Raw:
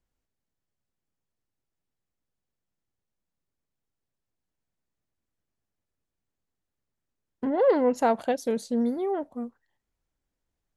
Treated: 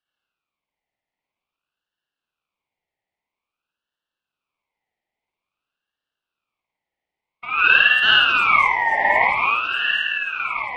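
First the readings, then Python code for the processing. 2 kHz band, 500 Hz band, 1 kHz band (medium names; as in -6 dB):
+29.0 dB, -7.5 dB, +12.0 dB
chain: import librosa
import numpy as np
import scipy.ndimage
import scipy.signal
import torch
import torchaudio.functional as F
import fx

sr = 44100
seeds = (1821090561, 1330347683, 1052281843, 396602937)

p1 = fx.reverse_delay_fb(x, sr, ms=675, feedback_pct=63, wet_db=-7.0)
p2 = scipy.signal.sosfilt(scipy.signal.ellip(3, 1.0, 40, [560.0, 8300.0], 'bandpass', fs=sr, output='sos'), p1)
p3 = fx.tilt_eq(p2, sr, slope=-4.0)
p4 = fx.rider(p3, sr, range_db=3, speed_s=0.5)
p5 = p3 + (p4 * 10.0 ** (-1.0 / 20.0))
p6 = 10.0 ** (-11.0 / 20.0) * np.tanh(p5 / 10.0 ** (-11.0 / 20.0))
p7 = p6 + 10.0 ** (-18.5 / 20.0) * np.pad(p6, (int(853 * sr / 1000.0), 0))[:len(p6)]
p8 = fx.rev_spring(p7, sr, rt60_s=1.1, pass_ms=(53,), chirp_ms=30, drr_db=-5.0)
p9 = fx.ring_lfo(p8, sr, carrier_hz=1800.0, swing_pct=25, hz=0.5)
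y = p9 * 10.0 ** (2.0 / 20.0)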